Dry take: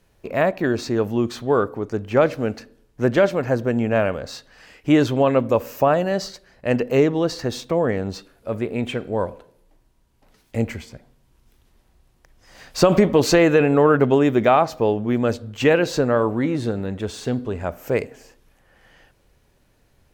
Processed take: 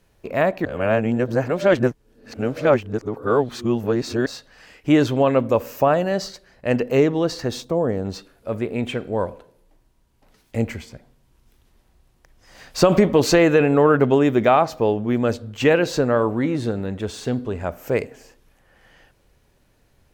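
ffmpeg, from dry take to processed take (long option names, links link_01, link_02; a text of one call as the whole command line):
ffmpeg -i in.wav -filter_complex "[0:a]asettb=1/sr,asplit=3[link_01][link_02][link_03];[link_01]atrim=end=7.624[link_04];[link_02]atrim=start=7.62:end=8.05,asetpts=PTS-STARTPTS,afade=type=in:duration=0.004:curve=qsin,afade=type=out:start_time=0.426:duration=0.004:curve=qsin,equalizer=frequency=2200:width=0.98:gain=-12[link_05];[link_03]atrim=start=8.046[link_06];[link_04][link_05]acrossfade=duration=0.004:curve1=hsin:curve2=qsin[link_07];[link_07][link_06]acrossfade=duration=0.004:curve1=qsin:curve2=hsin,asplit=3[link_08][link_09][link_10];[link_08]atrim=end=0.652[link_11];[link_09]atrim=start=0.648:end=4.262,asetpts=PTS-STARTPTS,areverse[link_12];[link_10]atrim=start=4.258[link_13];[link_11][link_12]acrossfade=duration=0.004:curve1=hsin:curve2=hsin[link_14];[link_14][link_13]acrossfade=duration=0.004:curve1=hsin:curve2=hsin" out.wav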